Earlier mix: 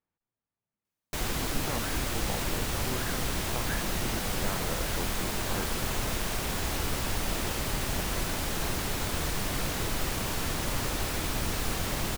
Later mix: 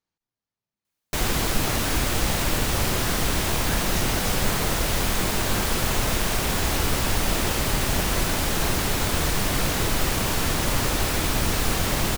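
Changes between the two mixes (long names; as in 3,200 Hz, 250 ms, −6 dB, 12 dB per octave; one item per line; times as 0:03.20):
speech: remove moving average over 9 samples
background +7.5 dB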